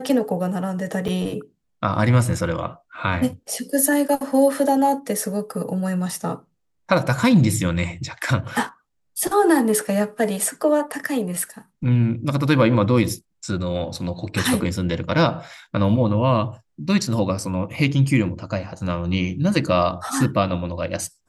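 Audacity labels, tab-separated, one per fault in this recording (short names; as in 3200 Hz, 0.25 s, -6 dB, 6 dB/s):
1.080000	1.090000	gap 6.1 ms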